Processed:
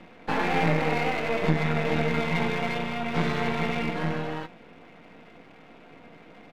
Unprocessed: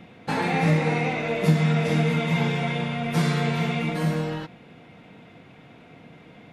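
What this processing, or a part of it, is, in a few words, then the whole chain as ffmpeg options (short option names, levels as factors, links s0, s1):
crystal radio: -filter_complex "[0:a]highpass=230,lowpass=2800,asplit=2[s0][s1];[s1]adelay=18,volume=0.282[s2];[s0][s2]amix=inputs=2:normalize=0,aeval=exprs='if(lt(val(0),0),0.251*val(0),val(0))':c=same,volume=1.5"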